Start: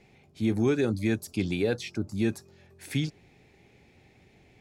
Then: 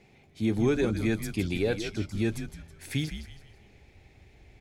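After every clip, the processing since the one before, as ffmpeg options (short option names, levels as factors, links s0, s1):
-filter_complex "[0:a]asubboost=boost=7:cutoff=70,asplit=5[s0][s1][s2][s3][s4];[s1]adelay=162,afreqshift=-88,volume=0.355[s5];[s2]adelay=324,afreqshift=-176,volume=0.132[s6];[s3]adelay=486,afreqshift=-264,volume=0.0484[s7];[s4]adelay=648,afreqshift=-352,volume=0.018[s8];[s0][s5][s6][s7][s8]amix=inputs=5:normalize=0"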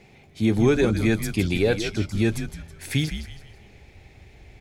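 -af "equalizer=f=290:t=o:w=0.77:g=-2,volume=2.24"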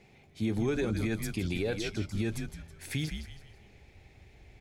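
-af "alimiter=limit=0.188:level=0:latency=1:release=59,volume=0.447"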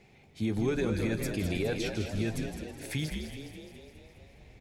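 -filter_complex "[0:a]asplit=8[s0][s1][s2][s3][s4][s5][s6][s7];[s1]adelay=208,afreqshift=66,volume=0.376[s8];[s2]adelay=416,afreqshift=132,volume=0.221[s9];[s3]adelay=624,afreqshift=198,volume=0.13[s10];[s4]adelay=832,afreqshift=264,volume=0.0776[s11];[s5]adelay=1040,afreqshift=330,volume=0.0457[s12];[s6]adelay=1248,afreqshift=396,volume=0.0269[s13];[s7]adelay=1456,afreqshift=462,volume=0.0158[s14];[s0][s8][s9][s10][s11][s12][s13][s14]amix=inputs=8:normalize=0"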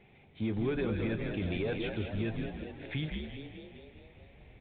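-filter_complex "[0:a]asplit=2[s0][s1];[s1]asoftclip=type=hard:threshold=0.0299,volume=0.422[s2];[s0][s2]amix=inputs=2:normalize=0,volume=0.596" -ar 8000 -c:a pcm_mulaw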